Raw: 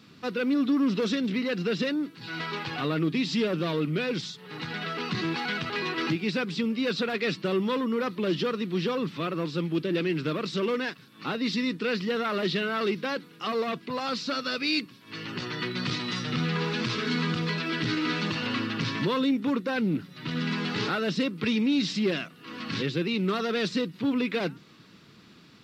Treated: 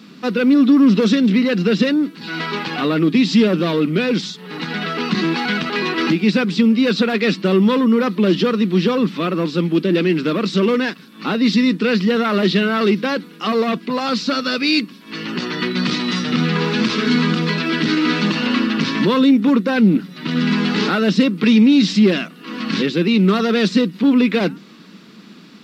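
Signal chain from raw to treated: resonant low shelf 150 Hz -9 dB, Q 3; gain +9 dB

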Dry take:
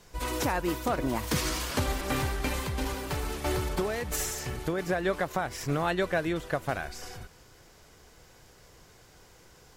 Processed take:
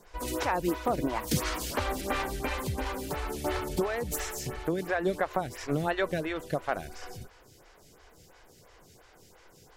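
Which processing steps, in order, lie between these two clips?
photocell phaser 2.9 Hz; gain +2.5 dB

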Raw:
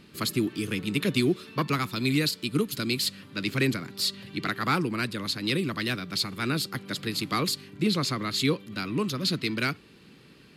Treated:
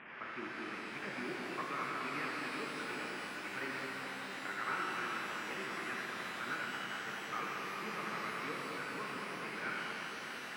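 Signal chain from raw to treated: delta modulation 16 kbps, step -29.5 dBFS; LPF 1900 Hz 24 dB/oct; differentiator; on a send: split-band echo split 1200 Hz, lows 0.21 s, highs 84 ms, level -3.5 dB; on the sum: shimmer reverb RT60 3.7 s, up +12 st, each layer -8 dB, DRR -1 dB; gain +4.5 dB

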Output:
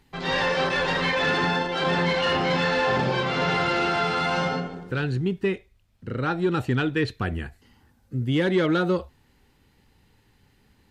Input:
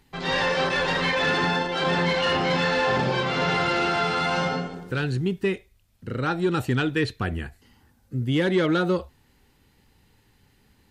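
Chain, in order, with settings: high shelf 6500 Hz -4 dB, from 4.6 s -11.5 dB, from 7.08 s -5 dB

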